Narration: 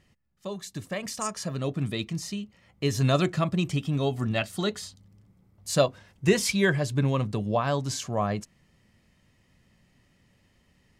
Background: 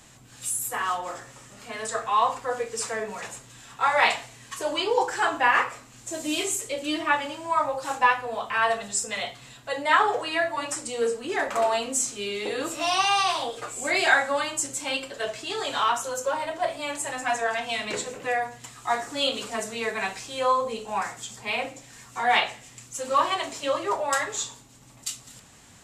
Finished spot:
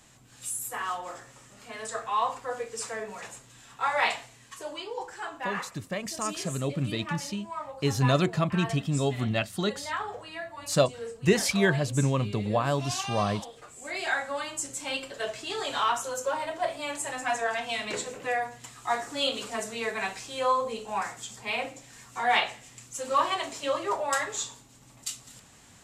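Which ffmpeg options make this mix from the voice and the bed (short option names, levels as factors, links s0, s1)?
-filter_complex "[0:a]adelay=5000,volume=0.944[s0];[1:a]volume=1.88,afade=t=out:st=4.19:d=0.7:silence=0.398107,afade=t=in:st=13.73:d=1.47:silence=0.298538[s1];[s0][s1]amix=inputs=2:normalize=0"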